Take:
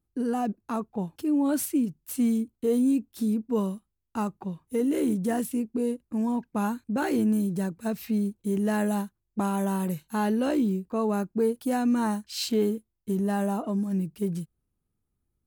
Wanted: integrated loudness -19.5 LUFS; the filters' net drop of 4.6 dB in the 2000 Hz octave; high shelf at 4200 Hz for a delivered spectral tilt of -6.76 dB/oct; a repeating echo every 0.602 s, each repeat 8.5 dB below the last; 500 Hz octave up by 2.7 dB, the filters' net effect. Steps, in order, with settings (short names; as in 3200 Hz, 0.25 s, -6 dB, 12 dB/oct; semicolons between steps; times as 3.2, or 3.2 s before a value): bell 500 Hz +3.5 dB; bell 2000 Hz -6 dB; high shelf 4200 Hz -4.5 dB; feedback echo 0.602 s, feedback 38%, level -8.5 dB; gain +7 dB